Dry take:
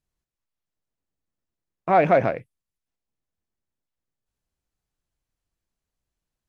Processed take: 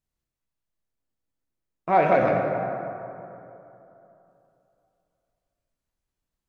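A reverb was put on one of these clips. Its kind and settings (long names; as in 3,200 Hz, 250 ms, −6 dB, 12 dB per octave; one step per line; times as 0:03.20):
dense smooth reverb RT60 3 s, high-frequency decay 0.45×, DRR 0 dB
level −3.5 dB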